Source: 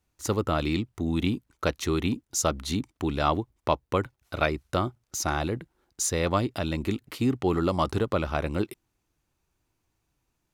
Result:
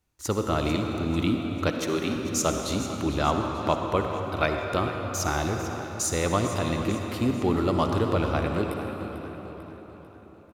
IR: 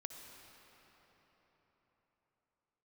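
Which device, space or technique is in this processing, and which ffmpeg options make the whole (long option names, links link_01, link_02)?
cathedral: -filter_complex "[1:a]atrim=start_sample=2205[link_01];[0:a][link_01]afir=irnorm=-1:irlink=0,asettb=1/sr,asplit=3[link_02][link_03][link_04];[link_02]atrim=end=1.714[link_05];[link_03]atrim=start=1.71:end=2.16,asetpts=PTS-STARTPTS,afade=type=in:duration=0.004:curve=qsin,afade=type=out:start_time=0.446:duration=0.004:curve=qsin,highpass=210[link_06];[link_04]atrim=start=2.156[link_07];[link_05][link_06]acrossfade=duration=0.004:curve1=hsin:curve2=qsin[link_08];[link_08][link_07]acrossfade=duration=0.004:curve1=qsin:curve2=hsin,aecho=1:1:445|890|1335|1780|2225:0.211|0.104|0.0507|0.0249|0.0122,volume=4.5dB"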